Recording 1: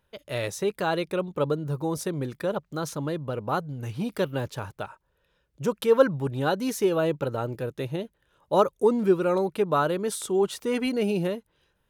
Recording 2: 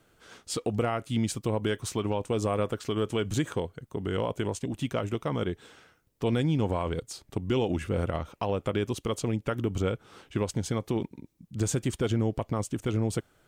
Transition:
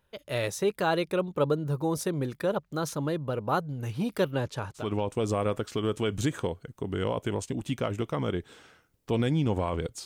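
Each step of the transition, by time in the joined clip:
recording 1
4.31–4.90 s: low-pass 9.3 kHz 12 dB/octave
4.82 s: go over to recording 2 from 1.95 s, crossfade 0.16 s

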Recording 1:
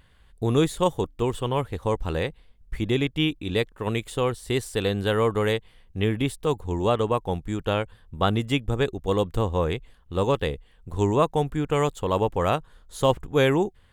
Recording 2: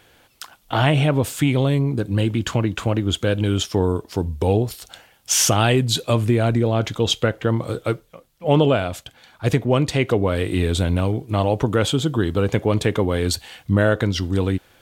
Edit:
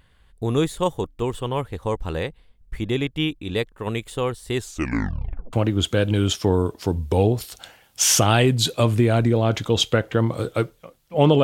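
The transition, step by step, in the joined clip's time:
recording 1
4.53 s: tape stop 1.00 s
5.53 s: go over to recording 2 from 2.83 s

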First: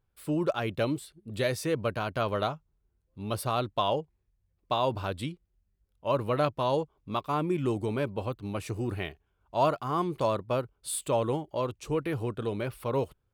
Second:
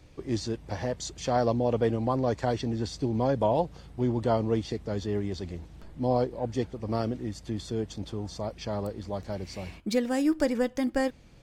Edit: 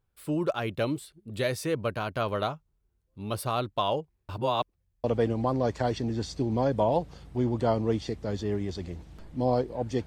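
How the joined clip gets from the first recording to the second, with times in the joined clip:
first
4.29–5.04 s: reverse
5.04 s: go over to second from 1.67 s

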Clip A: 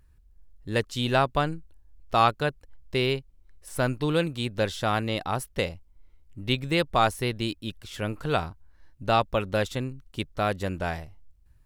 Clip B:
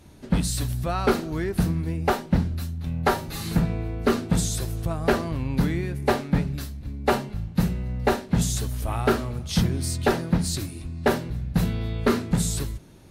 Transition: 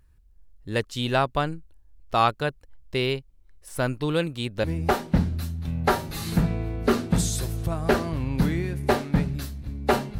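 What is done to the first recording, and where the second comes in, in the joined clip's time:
clip A
4.64 s: go over to clip B from 1.83 s

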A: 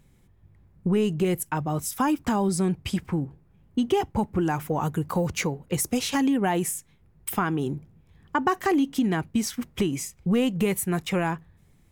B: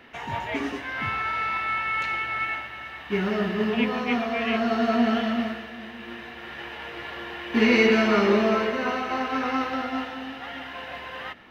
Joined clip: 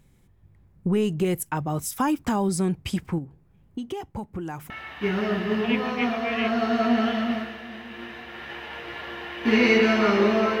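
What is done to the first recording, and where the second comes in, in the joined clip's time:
A
3.18–4.70 s: compression 2.5:1, threshold -34 dBFS
4.70 s: go over to B from 2.79 s

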